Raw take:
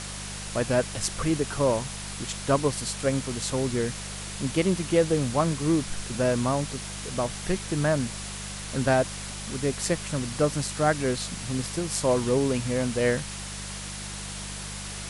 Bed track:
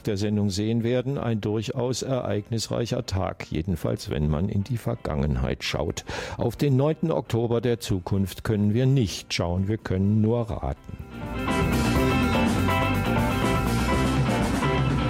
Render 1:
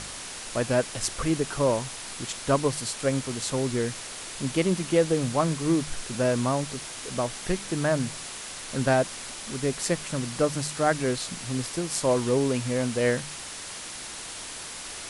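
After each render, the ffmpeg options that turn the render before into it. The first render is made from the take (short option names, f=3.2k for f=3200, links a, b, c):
-af "bandreject=f=50:t=h:w=4,bandreject=f=100:t=h:w=4,bandreject=f=150:t=h:w=4,bandreject=f=200:t=h:w=4"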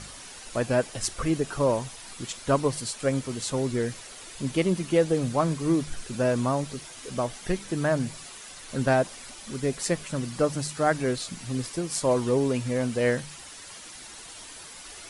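-af "afftdn=nr=9:nf=-39"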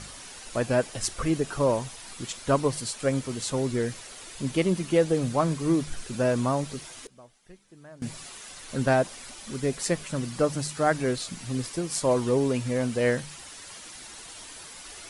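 -filter_complex "[0:a]asplit=3[a][b][c];[a]atrim=end=7.07,asetpts=PTS-STARTPTS,afade=t=out:st=6.89:d=0.18:c=log:silence=0.0707946[d];[b]atrim=start=7.07:end=8.02,asetpts=PTS-STARTPTS,volume=-23dB[e];[c]atrim=start=8.02,asetpts=PTS-STARTPTS,afade=t=in:d=0.18:c=log:silence=0.0707946[f];[d][e][f]concat=n=3:v=0:a=1"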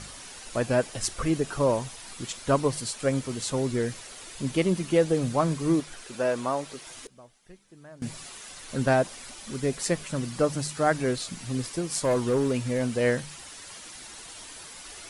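-filter_complex "[0:a]asettb=1/sr,asplit=3[a][b][c];[a]atrim=end=5.804[d];[b]atrim=start=5.8:end=6.87,asetpts=PTS-STARTPTS,afade=t=in:d=0.004:c=qsin,afade=t=out:st=1.066:d=0.004:c=qsin,bass=f=250:g=-14,treble=f=4k:g=-3[e];[c]atrim=start=6.866[f];[d][e]acrossfade=d=0.004:c1=hsin:c2=qsin[g];[g][f]acrossfade=d=0.004:c1=qsin:c2=hsin,asettb=1/sr,asplit=3[h][i][j];[h]atrim=end=11.984[k];[i]atrim=start=11.98:end=12.82,asetpts=PTS-STARTPTS,afade=t=in:d=0.004:c=qsin,afade=t=out:st=0.836:d=0.004:c=qsin,asoftclip=type=hard:threshold=-19dB[l];[j]atrim=start=12.816[m];[k][l]acrossfade=d=0.004:c1=hsin:c2=qsin[n];[n][m]acrossfade=d=0.004:c1=qsin:c2=hsin"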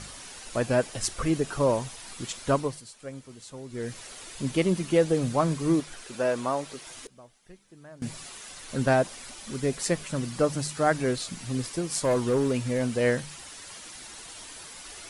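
-filter_complex "[0:a]asplit=3[a][b][c];[a]atrim=end=2.83,asetpts=PTS-STARTPTS,afade=t=out:st=2.48:d=0.35:silence=0.199526[d];[b]atrim=start=2.83:end=3.69,asetpts=PTS-STARTPTS,volume=-14dB[e];[c]atrim=start=3.69,asetpts=PTS-STARTPTS,afade=t=in:d=0.35:silence=0.199526[f];[d][e][f]concat=n=3:v=0:a=1"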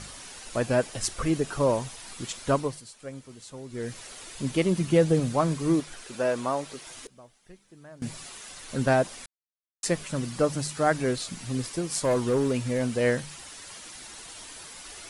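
-filter_complex "[0:a]asettb=1/sr,asplit=3[a][b][c];[a]atrim=end=4.784[d];[b]atrim=start=4.78:end=5.2,asetpts=PTS-STARTPTS,afade=t=in:d=0.004:c=qsin,afade=t=out:st=0.416:d=0.004:c=qsin,equalizer=f=120:t=o:w=1.2:g=9.5[e];[c]atrim=start=5.196[f];[d][e]acrossfade=d=0.004:c1=hsin:c2=qsin[g];[g][f]acrossfade=d=0.004:c1=qsin:c2=hsin,asplit=3[h][i][j];[h]atrim=end=9.26,asetpts=PTS-STARTPTS,afade=t=out:st=9.256:d=0.004:c=hsin[k];[i]atrim=start=9.26:end=9.83,asetpts=PTS-STARTPTS,volume=0[l];[j]atrim=start=9.83,asetpts=PTS-STARTPTS,afade=t=in:d=0.004:c=hsin[m];[k][l][m]concat=n=3:v=0:a=1"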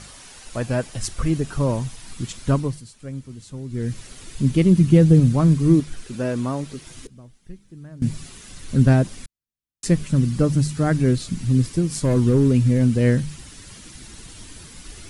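-af "asubboost=boost=7:cutoff=250"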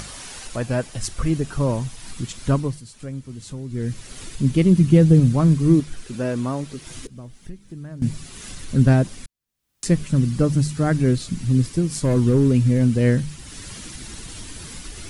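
-af "acompressor=mode=upward:threshold=-28dB:ratio=2.5"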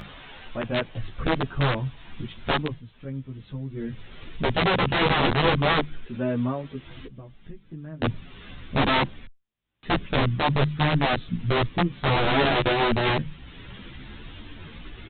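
-filter_complex "[0:a]aresample=8000,aeval=exprs='(mod(4.47*val(0)+1,2)-1)/4.47':c=same,aresample=44100,asplit=2[a][b];[b]adelay=11.8,afreqshift=0.57[c];[a][c]amix=inputs=2:normalize=1"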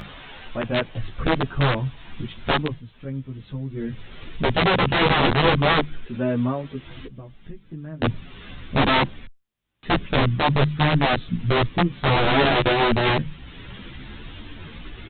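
-af "volume=3dB"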